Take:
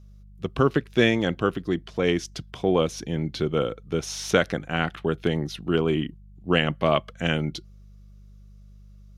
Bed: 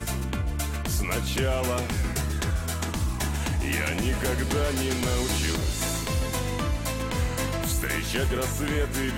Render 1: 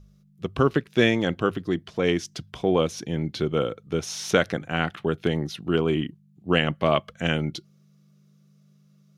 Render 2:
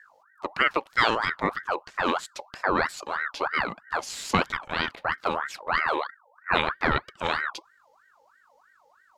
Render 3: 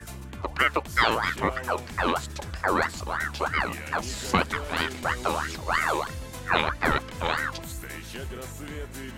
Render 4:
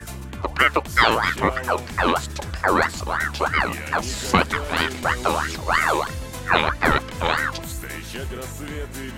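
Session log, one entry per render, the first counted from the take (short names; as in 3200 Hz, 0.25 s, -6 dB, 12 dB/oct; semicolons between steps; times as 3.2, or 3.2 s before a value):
de-hum 50 Hz, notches 2
ring modulator with a swept carrier 1200 Hz, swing 45%, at 3.1 Hz
add bed -10.5 dB
gain +5.5 dB; limiter -1 dBFS, peak gain reduction 2 dB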